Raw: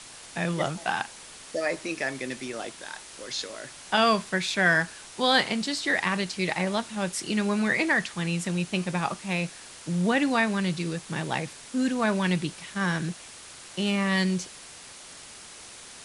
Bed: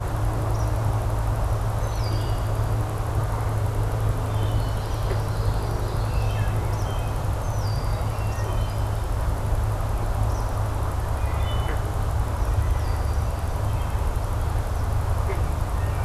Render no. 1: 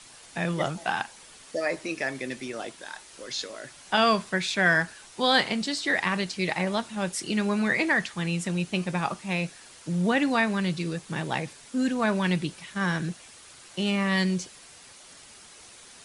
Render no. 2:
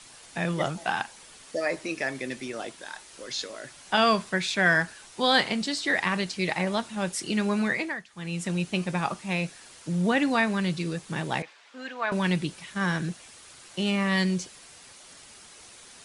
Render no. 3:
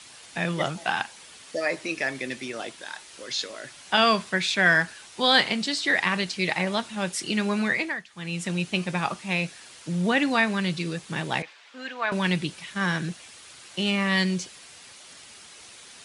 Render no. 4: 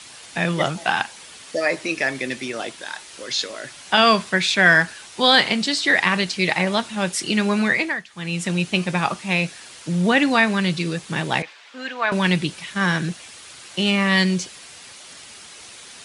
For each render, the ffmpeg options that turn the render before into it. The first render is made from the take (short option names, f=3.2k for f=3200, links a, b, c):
-af "afftdn=nr=6:nf=-46"
-filter_complex "[0:a]asettb=1/sr,asplit=3[a][b][c];[a]atrim=end=11.424[d];[b]atrim=start=11.42:end=12.12,asetpts=PTS-STARTPTS,afade=t=in:d=0.004:c=qsin,afade=t=out:st=0.696:d=0.004:c=qsin,highpass=740,lowpass=3.2k[e];[c]atrim=start=12.116[f];[d][e]acrossfade=d=0.004:c1=hsin:c2=qsin[g];[g][f]acrossfade=d=0.004:c1=qsin:c2=hsin,asplit=3[h][i][j];[h]atrim=end=8.04,asetpts=PTS-STARTPTS,afade=t=out:st=7.61:d=0.43:silence=0.112202[k];[i]atrim=start=8.04:end=8.07,asetpts=PTS-STARTPTS,volume=-19dB[l];[j]atrim=start=8.07,asetpts=PTS-STARTPTS,afade=t=in:d=0.43:silence=0.112202[m];[k][l][m]concat=n=3:v=0:a=1"
-af "highpass=58,equalizer=f=3k:t=o:w=1.9:g=4.5"
-af "volume=5.5dB,alimiter=limit=-2dB:level=0:latency=1"